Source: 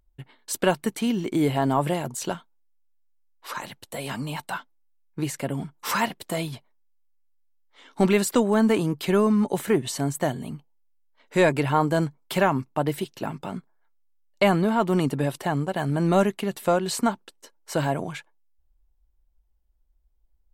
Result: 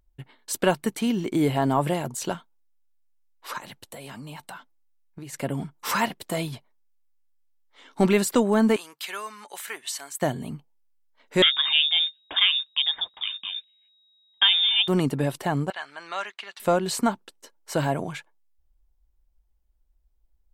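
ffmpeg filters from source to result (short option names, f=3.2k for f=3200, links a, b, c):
-filter_complex "[0:a]asplit=3[a][b][c];[a]afade=t=out:st=3.57:d=0.02[d];[b]acompressor=threshold=-37dB:ratio=5:attack=3.2:release=140:knee=1:detection=peak,afade=t=in:st=3.57:d=0.02,afade=t=out:st=5.32:d=0.02[e];[c]afade=t=in:st=5.32:d=0.02[f];[d][e][f]amix=inputs=3:normalize=0,asettb=1/sr,asplit=3[g][h][i];[g]atrim=end=8.764[j];[h]atrim=start=8.76:end=10.22,asetpts=PTS-STARTPTS,afade=t=in:d=0.004:c=qsin,afade=t=out:st=1.456:d=0.004:c=qsin,highpass=1.4k[k];[i]atrim=start=10.216[l];[j][k]acrossfade=d=0.004:c1=hsin:c2=qsin[m];[m][l]acrossfade=d=0.004:c1=qsin:c2=hsin,asettb=1/sr,asplit=3[n][o][p];[n]atrim=end=11.424[q];[o]atrim=start=11.42:end=14.88,asetpts=PTS-STARTPTS,afade=t=in:d=0.004:c=qsin,afade=t=out:st=3.456:d=0.004:c=qsin,lowpass=f=3.2k:t=q:w=0.5098,lowpass=f=3.2k:t=q:w=0.6013,lowpass=f=3.2k:t=q:w=0.9,lowpass=f=3.2k:t=q:w=2.563,afreqshift=-3800[r];[p]atrim=start=14.876[s];[q][r]acrossfade=d=0.004:c1=hsin:c2=qsin[t];[t][s]acrossfade=d=0.004:c1=qsin:c2=hsin,asettb=1/sr,asplit=3[u][v][w];[u]atrim=end=15.704[x];[v]atrim=start=15.7:end=16.6,asetpts=PTS-STARTPTS,afade=t=in:d=0.004:c=qsin,afade=t=out:st=0.896:d=0.004:c=qsin,asuperpass=centerf=2500:order=4:qfactor=0.62[y];[w]atrim=start=16.596[z];[x][y]acrossfade=d=0.004:c1=hsin:c2=qsin[aa];[aa][z]acrossfade=d=0.004:c1=qsin:c2=hsin"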